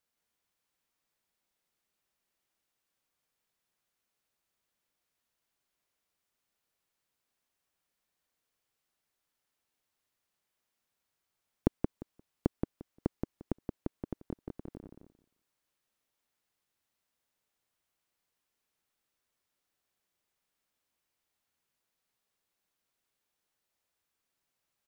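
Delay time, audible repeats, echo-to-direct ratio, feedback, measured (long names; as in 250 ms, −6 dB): 175 ms, 3, −4.0 dB, 17%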